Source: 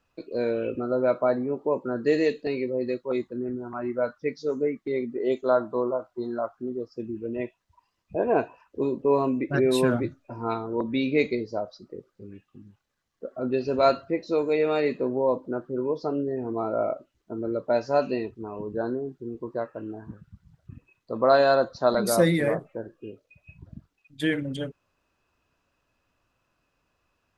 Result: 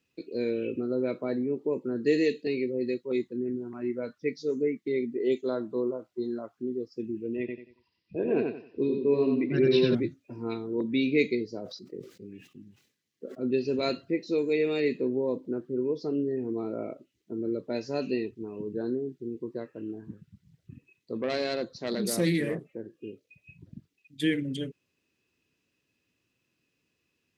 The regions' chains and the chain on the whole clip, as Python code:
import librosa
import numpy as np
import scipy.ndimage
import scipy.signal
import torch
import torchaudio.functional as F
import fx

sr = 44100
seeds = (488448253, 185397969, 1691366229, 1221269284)

y = fx.chain(x, sr, fx.peak_eq(hz=850.0, db=-3.5, octaves=0.86),
    fx.echo_feedback(ms=91, feedback_pct=29, wet_db=-4),
    fx.resample_bad(factor=4, down='none', up='filtered'), at=(7.39, 9.95))
y = fx.chain(y, sr, fx.highpass(hz=83.0, slope=12),
    fx.sustainer(db_per_s=110.0), at=(11.55, 13.51))
y = fx.chain(y, sr, fx.tube_stage(drive_db=13.0, bias=0.35),
    fx.doppler_dist(depth_ms=0.13), at=(21.18, 22.94))
y = scipy.signal.sosfilt(scipy.signal.butter(2, 130.0, 'highpass', fs=sr, output='sos'), y)
y = fx.band_shelf(y, sr, hz=930.0, db=-14.0, octaves=1.7)